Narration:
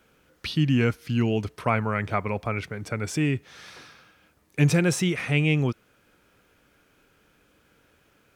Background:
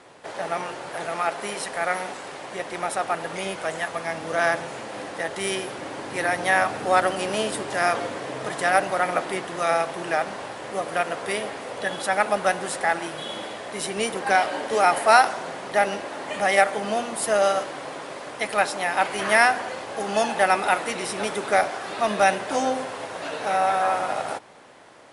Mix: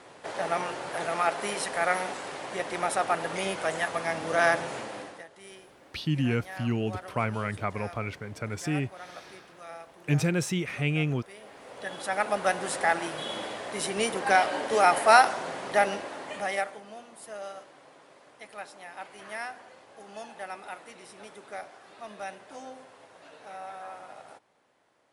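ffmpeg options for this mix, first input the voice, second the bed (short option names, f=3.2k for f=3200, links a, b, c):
-filter_complex "[0:a]adelay=5500,volume=-5dB[a];[1:a]volume=18.5dB,afade=t=out:st=4.77:d=0.49:silence=0.0944061,afade=t=in:st=11.36:d=1.44:silence=0.105925,afade=t=out:st=15.73:d=1.11:silence=0.133352[b];[a][b]amix=inputs=2:normalize=0"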